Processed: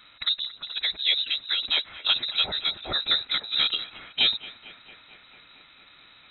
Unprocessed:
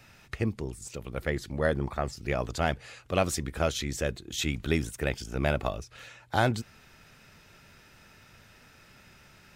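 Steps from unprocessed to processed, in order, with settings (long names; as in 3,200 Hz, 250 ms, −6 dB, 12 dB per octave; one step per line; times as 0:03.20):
voice inversion scrambler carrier 3,900 Hz
phase-vocoder stretch with locked phases 0.66×
bucket-brigade delay 225 ms, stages 4,096, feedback 78%, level −15.5 dB
level +3.5 dB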